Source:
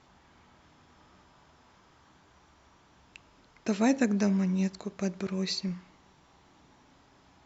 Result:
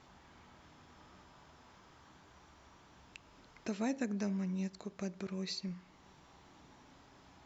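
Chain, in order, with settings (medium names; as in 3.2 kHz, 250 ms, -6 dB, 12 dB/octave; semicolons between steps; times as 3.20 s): compression 1.5:1, threshold -52 dBFS, peak gain reduction 11.5 dB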